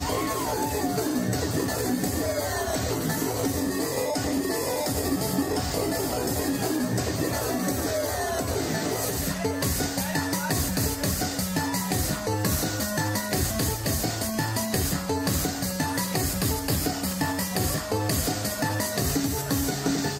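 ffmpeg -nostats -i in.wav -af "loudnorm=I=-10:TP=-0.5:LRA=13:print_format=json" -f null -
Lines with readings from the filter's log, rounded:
"input_i" : "-26.4",
"input_tp" : "-11.2",
"input_lra" : "0.7",
"input_thresh" : "-36.4",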